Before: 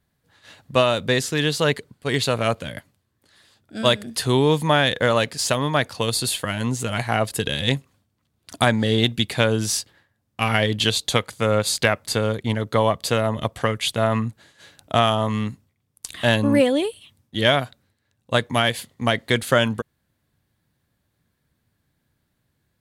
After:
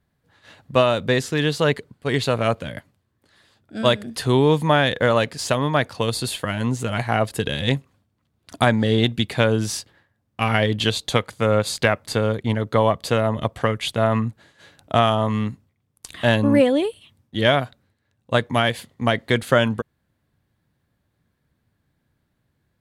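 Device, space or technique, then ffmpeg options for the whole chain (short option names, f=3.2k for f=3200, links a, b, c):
behind a face mask: -af "highshelf=f=3.3k:g=-8,volume=1.5dB"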